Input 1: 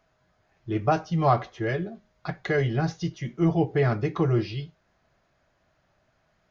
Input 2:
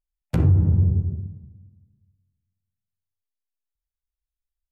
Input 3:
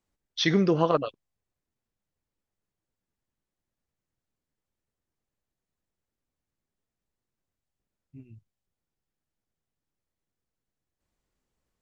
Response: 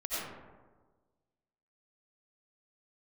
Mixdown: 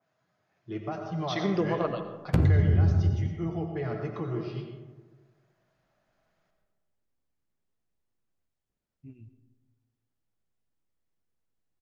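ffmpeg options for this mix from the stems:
-filter_complex "[0:a]highpass=f=110:w=0.5412,highpass=f=110:w=1.3066,alimiter=limit=-16.5dB:level=0:latency=1:release=312,adynamicequalizer=threshold=0.00562:dfrequency=2200:dqfactor=0.7:tfrequency=2200:tqfactor=0.7:attack=5:release=100:ratio=0.375:range=2:mode=cutabove:tftype=highshelf,volume=-10dB,asplit=3[a][b][c];[b]volume=-5.5dB[d];[1:a]adelay=2000,volume=1.5dB,asplit=2[e][f];[f]volume=-23dB[g];[2:a]adelay=900,volume=-1dB,asplit=2[h][i];[i]volume=-17.5dB[j];[c]apad=whole_len=560706[k];[h][k]sidechaincompress=threshold=-40dB:ratio=8:attack=16:release=596[l];[e][l]amix=inputs=2:normalize=0,highshelf=f=4.9k:g=-6,acompressor=threshold=-19dB:ratio=6,volume=0dB[m];[3:a]atrim=start_sample=2205[n];[d][g][j]amix=inputs=3:normalize=0[o];[o][n]afir=irnorm=-1:irlink=0[p];[a][m][p]amix=inputs=3:normalize=0"

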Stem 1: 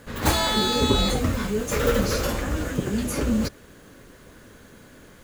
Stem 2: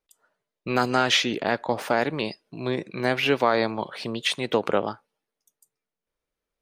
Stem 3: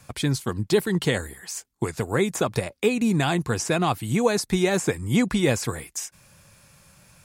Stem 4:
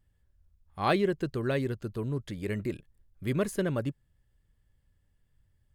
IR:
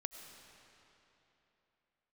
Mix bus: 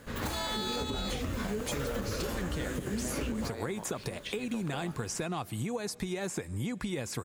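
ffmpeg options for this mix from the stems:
-filter_complex "[0:a]volume=-4dB[a];[1:a]acompressor=threshold=-21dB:ratio=6,volume=-15dB[b];[2:a]acompressor=threshold=-26dB:ratio=6,adelay=1500,volume=-4.5dB,asplit=2[c][d];[d]volume=-13.5dB[e];[a][c]amix=inputs=2:normalize=0,alimiter=limit=-21dB:level=0:latency=1:release=152,volume=0dB[f];[4:a]atrim=start_sample=2205[g];[e][g]afir=irnorm=-1:irlink=0[h];[b][f][h]amix=inputs=3:normalize=0,acompressor=threshold=-30dB:ratio=6"

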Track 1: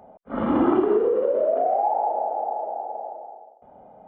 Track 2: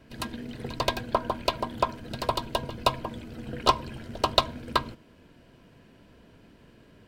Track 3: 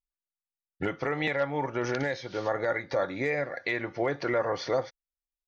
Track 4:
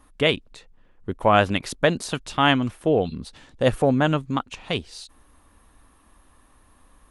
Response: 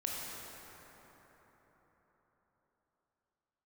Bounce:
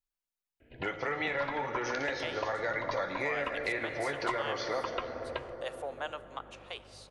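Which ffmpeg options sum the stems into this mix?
-filter_complex "[1:a]lowpass=f=2.7k:w=0.5412,lowpass=f=2.7k:w=1.3066,asplit=2[a][b];[b]afreqshift=0.65[c];[a][c]amix=inputs=2:normalize=1,adelay=600,volume=-4.5dB[d];[2:a]flanger=delay=8.8:depth=3.6:regen=-52:speed=1.8:shape=triangular,volume=1.5dB,asplit=2[e][f];[f]volume=-6dB[g];[3:a]highpass=f=520:w=0.5412,highpass=f=520:w=1.3066,alimiter=limit=-10dB:level=0:latency=1:release=377,aeval=exprs='val(0)+0.00562*(sin(2*PI*50*n/s)+sin(2*PI*2*50*n/s)/2+sin(2*PI*3*50*n/s)/3+sin(2*PI*4*50*n/s)/4+sin(2*PI*5*50*n/s)/5)':c=same,adelay=2000,volume=-14.5dB,asplit=2[h][i];[i]volume=-16dB[j];[4:a]atrim=start_sample=2205[k];[g][j]amix=inputs=2:normalize=0[l];[l][k]afir=irnorm=-1:irlink=0[m];[d][e][h][m]amix=inputs=4:normalize=0,acrossover=split=430|920|2100[n][o][p][q];[n]acompressor=threshold=-44dB:ratio=4[r];[o]acompressor=threshold=-38dB:ratio=4[s];[p]acompressor=threshold=-35dB:ratio=4[t];[q]acompressor=threshold=-39dB:ratio=4[u];[r][s][t][u]amix=inputs=4:normalize=0"

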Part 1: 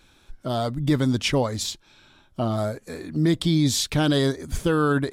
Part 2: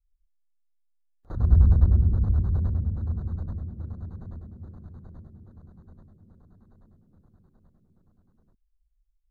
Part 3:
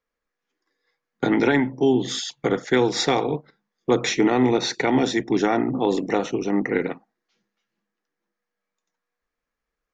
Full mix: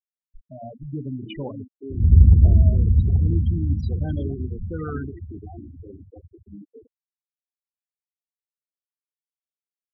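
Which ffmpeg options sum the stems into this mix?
-filter_complex "[0:a]adelay=50,volume=-10.5dB[a];[1:a]highpass=f=48:w=0.5412,highpass=f=48:w=1.3066,adynamicequalizer=threshold=0.0141:dfrequency=250:dqfactor=0.79:tfrequency=250:tqfactor=0.79:attack=5:release=100:ratio=0.375:range=1.5:mode=boostabove:tftype=bell,adelay=600,volume=2dB[b];[2:a]acrossover=split=450[c][d];[c]aeval=exprs='val(0)*(1-0.5/2+0.5/2*cos(2*PI*3.2*n/s))':c=same[e];[d]aeval=exprs='val(0)*(1-0.5/2-0.5/2*cos(2*PI*3.2*n/s))':c=same[f];[e][f]amix=inputs=2:normalize=0,volume=-16.5dB[g];[a][b][g]amix=inputs=3:normalize=0,lowshelf=f=160:g=5,bandreject=f=60:t=h:w=6,bandreject=f=120:t=h:w=6,bandreject=f=180:t=h:w=6,bandreject=f=240:t=h:w=6,bandreject=f=300:t=h:w=6,bandreject=f=360:t=h:w=6,bandreject=f=420:t=h:w=6,bandreject=f=480:t=h:w=6,bandreject=f=540:t=h:w=6,bandreject=f=600:t=h:w=6,afftfilt=real='re*gte(hypot(re,im),0.0708)':imag='im*gte(hypot(re,im),0.0708)':win_size=1024:overlap=0.75"

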